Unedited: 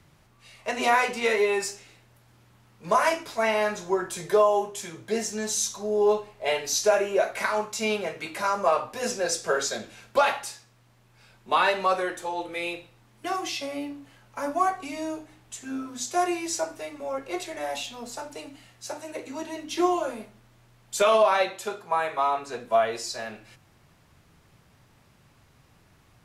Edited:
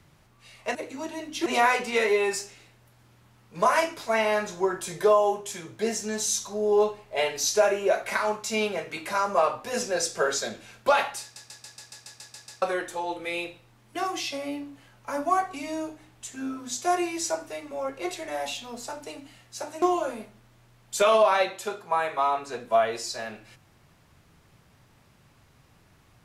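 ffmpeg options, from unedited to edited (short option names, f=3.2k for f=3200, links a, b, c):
-filter_complex "[0:a]asplit=14[a][b][c][d][e][f][g][h][i][j][k][l][m][n];[a]atrim=end=0.752[o];[b]atrim=start=19.108:end=19.822[p];[c]atrim=start=0.748:end=10.652[q];[d]atrim=start=10.508:end=10.652[r];[e]atrim=start=10.508:end=10.652[s];[f]atrim=start=10.508:end=10.652[t];[g]atrim=start=10.508:end=10.652[u];[h]atrim=start=10.508:end=10.652[v];[i]atrim=start=10.508:end=10.652[w];[j]atrim=start=10.508:end=10.652[x];[k]atrim=start=10.508:end=10.652[y];[l]atrim=start=10.508:end=10.652[z];[m]atrim=start=11.908:end=19.112[aa];[n]atrim=start=19.818[ab];[o][p]acrossfade=d=0.004:c1=hsin:c2=hsin[ac];[ac][q]acrossfade=d=0.004:c1=hsin:c2=hsin[ad];[ad][r]acrossfade=d=0.004:c1=hsin:c2=hsin[ae];[ae][s]acrossfade=d=0.004:c1=hsin:c2=hsin[af];[af][t]acrossfade=d=0.004:c1=hsin:c2=hsin[ag];[ag][u]acrossfade=d=0.004:c1=hsin:c2=hsin[ah];[ah][v]acrossfade=d=0.004:c1=hsin:c2=hsin[ai];[ai][w]acrossfade=d=0.004:c1=hsin:c2=hsin[aj];[aj][x]acrossfade=d=0.004:c1=hsin:c2=hsin[ak];[ak][y]acrossfade=d=0.004:c1=hsin:c2=hsin[al];[al][z]acrossfade=d=0.004:c1=hsin:c2=hsin[am];[am][aa]acrossfade=d=0.004:c1=hsin:c2=hsin[an];[an][ab]acrossfade=d=0.004:c1=hsin:c2=hsin"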